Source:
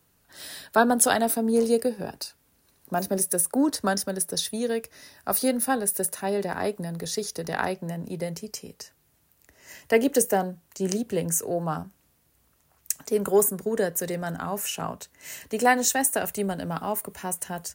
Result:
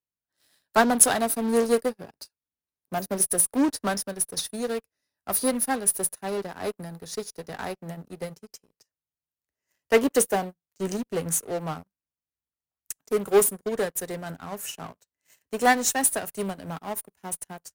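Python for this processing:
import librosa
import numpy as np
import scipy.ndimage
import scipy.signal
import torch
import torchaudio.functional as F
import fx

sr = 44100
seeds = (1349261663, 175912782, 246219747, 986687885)

p1 = fx.dynamic_eq(x, sr, hz=9900.0, q=5.8, threshold_db=-42.0, ratio=4.0, max_db=6)
p2 = fx.fuzz(p1, sr, gain_db=30.0, gate_db=-39.0)
p3 = p1 + F.gain(torch.from_numpy(p2), -5.0).numpy()
p4 = fx.upward_expand(p3, sr, threshold_db=-32.0, expansion=2.5)
y = F.gain(torch.from_numpy(p4), -1.0).numpy()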